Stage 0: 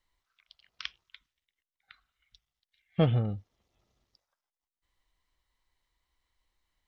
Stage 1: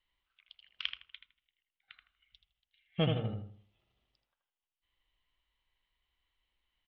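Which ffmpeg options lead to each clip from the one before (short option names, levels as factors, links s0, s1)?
-filter_complex "[0:a]lowpass=f=3000:t=q:w=3.9,asplit=2[s0][s1];[s1]adelay=80,lowpass=f=2000:p=1,volume=0.631,asplit=2[s2][s3];[s3]adelay=80,lowpass=f=2000:p=1,volume=0.36,asplit=2[s4][s5];[s5]adelay=80,lowpass=f=2000:p=1,volume=0.36,asplit=2[s6][s7];[s7]adelay=80,lowpass=f=2000:p=1,volume=0.36,asplit=2[s8][s9];[s9]adelay=80,lowpass=f=2000:p=1,volume=0.36[s10];[s2][s4][s6][s8][s10]amix=inputs=5:normalize=0[s11];[s0][s11]amix=inputs=2:normalize=0,volume=0.473"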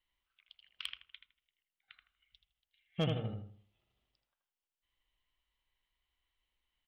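-af "asoftclip=type=hard:threshold=0.0841,volume=0.708"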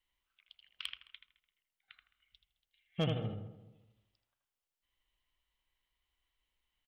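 -filter_complex "[0:a]asplit=2[s0][s1];[s1]adelay=214,lowpass=f=1100:p=1,volume=0.2,asplit=2[s2][s3];[s3]adelay=214,lowpass=f=1100:p=1,volume=0.33,asplit=2[s4][s5];[s5]adelay=214,lowpass=f=1100:p=1,volume=0.33[s6];[s0][s2][s4][s6]amix=inputs=4:normalize=0"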